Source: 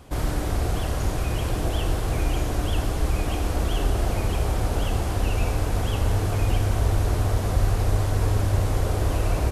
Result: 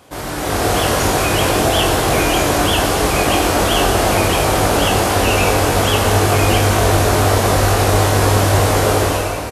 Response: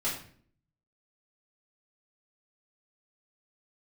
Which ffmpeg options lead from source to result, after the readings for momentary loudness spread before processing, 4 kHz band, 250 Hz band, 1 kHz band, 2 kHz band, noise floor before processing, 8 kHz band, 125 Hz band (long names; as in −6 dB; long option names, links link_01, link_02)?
3 LU, +17.5 dB, +12.0 dB, +16.5 dB, +17.0 dB, −27 dBFS, +17.0 dB, +6.0 dB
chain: -filter_complex "[0:a]highpass=frequency=400:poles=1,asplit=2[link_01][link_02];[link_02]adelay=21,volume=-5dB[link_03];[link_01][link_03]amix=inputs=2:normalize=0,dynaudnorm=framelen=110:gausssize=9:maxgain=11.5dB,volume=5dB"